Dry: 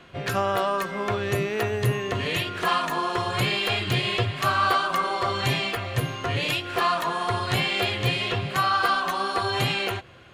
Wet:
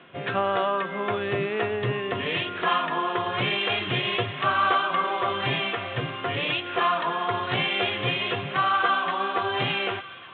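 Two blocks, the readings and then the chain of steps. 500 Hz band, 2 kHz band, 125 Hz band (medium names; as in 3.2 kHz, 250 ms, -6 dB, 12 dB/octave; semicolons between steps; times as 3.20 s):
0.0 dB, 0.0 dB, -6.0 dB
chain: high-pass 160 Hz 12 dB/octave; feedback echo behind a high-pass 1148 ms, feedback 65%, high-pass 1.4 kHz, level -16 dB; resampled via 8 kHz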